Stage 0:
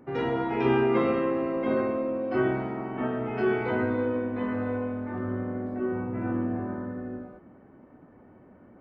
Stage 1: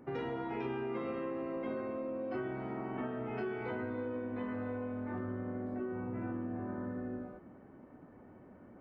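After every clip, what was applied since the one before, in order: compression, threshold -33 dBFS, peak gain reduction 13.5 dB; trim -2.5 dB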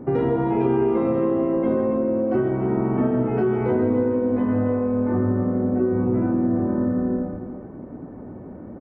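tilt shelf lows +10 dB, about 1.3 kHz; loudspeakers at several distances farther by 54 m -11 dB, 96 m -10 dB; trim +9 dB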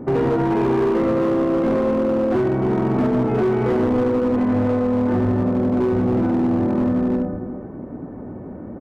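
overload inside the chain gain 19 dB; trim +4 dB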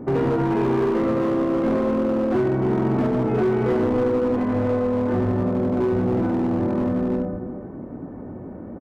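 doubling 22 ms -12 dB; trim -2 dB

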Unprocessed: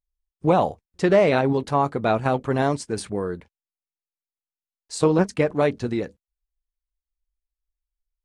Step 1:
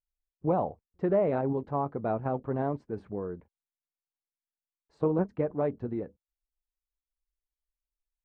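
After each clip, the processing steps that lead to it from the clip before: low-pass 1 kHz 12 dB/octave; trim -8 dB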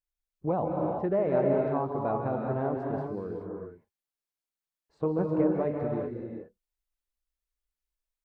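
reverberation, pre-delay 139 ms, DRR -0.5 dB; trim -2 dB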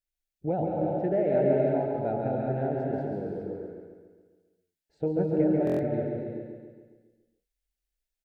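Butterworth band-stop 1.1 kHz, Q 1.7; feedback delay 138 ms, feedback 55%, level -5 dB; buffer glitch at 5.65 s, samples 1024, times 5

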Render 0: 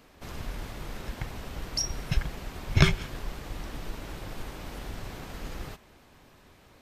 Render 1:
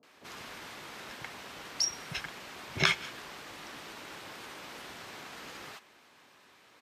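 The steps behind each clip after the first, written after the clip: frequency weighting A; bands offset in time lows, highs 30 ms, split 610 Hz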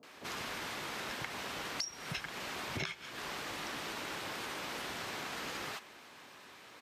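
compression 20:1, threshold -41 dBFS, peak gain reduction 22.5 dB; trim +5.5 dB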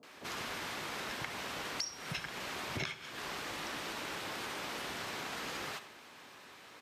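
reverberation RT60 0.35 s, pre-delay 52 ms, DRR 12.5 dB

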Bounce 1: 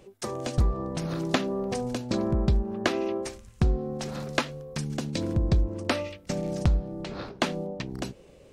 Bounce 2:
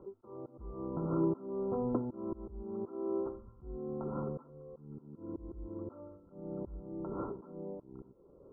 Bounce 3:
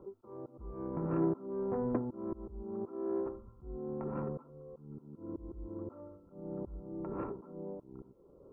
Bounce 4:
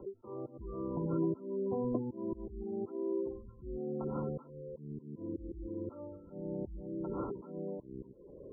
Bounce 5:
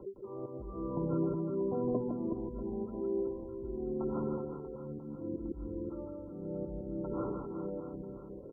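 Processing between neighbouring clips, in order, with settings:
slow attack 624 ms; rippled Chebyshev low-pass 1.4 kHz, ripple 9 dB; trim +4 dB
self-modulated delay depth 0.2 ms
spectral gate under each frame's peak -20 dB strong; three bands compressed up and down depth 40%; trim +1 dB
reverse bouncing-ball echo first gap 160 ms, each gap 1.3×, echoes 5

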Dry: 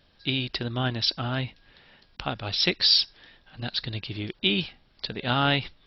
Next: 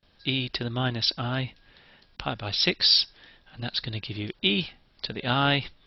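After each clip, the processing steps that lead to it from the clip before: gate with hold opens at -53 dBFS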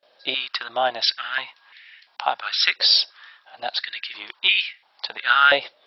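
step-sequenced high-pass 2.9 Hz 580–2100 Hz; trim +3 dB

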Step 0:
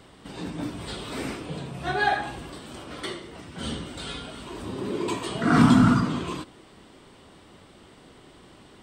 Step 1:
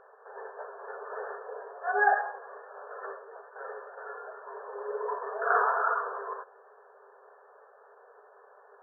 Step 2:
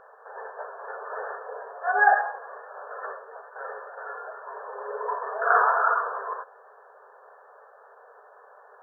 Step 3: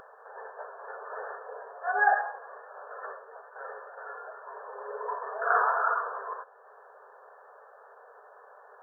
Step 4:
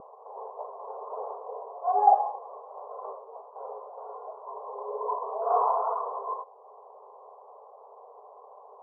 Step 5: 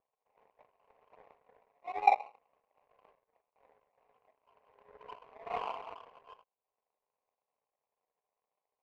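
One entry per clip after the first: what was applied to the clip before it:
FFT band-pass 390–1800 Hz
peaking EQ 380 Hz -12 dB 0.35 oct; trim +5.5 dB
upward compressor, threshold -42 dBFS; trim -4.5 dB
rippled Chebyshev low-pass 1.1 kHz, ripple 3 dB; trim +6 dB
power-law waveshaper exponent 2; trim -1.5 dB

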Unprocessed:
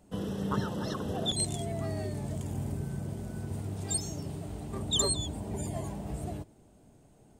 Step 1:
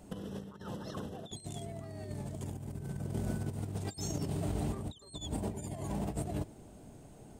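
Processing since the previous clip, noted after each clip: compressor with a negative ratio -39 dBFS, ratio -0.5; trim +1 dB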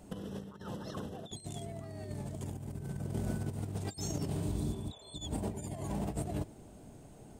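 spectral replace 4.39–5.15 s, 420–3500 Hz both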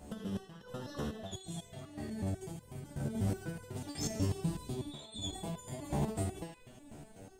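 band-passed feedback delay 77 ms, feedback 74%, band-pass 2.5 kHz, level -4 dB; resonator arpeggio 8.1 Hz 73–500 Hz; trim +11.5 dB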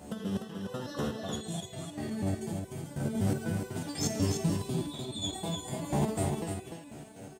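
high-pass 97 Hz; on a send: delay 298 ms -5.5 dB; on the sum: trim +5.5 dB

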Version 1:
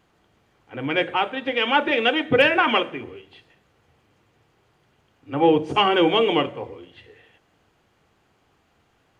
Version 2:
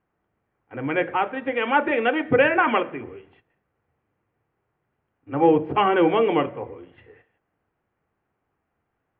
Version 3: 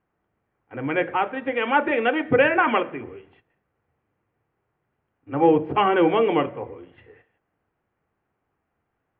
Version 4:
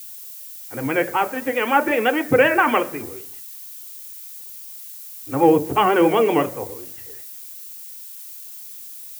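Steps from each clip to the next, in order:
low-pass 2.2 kHz 24 dB/octave; gate -52 dBFS, range -12 dB
no audible change
vibrato 7.8 Hz 67 cents; added noise violet -40 dBFS; trim +2.5 dB

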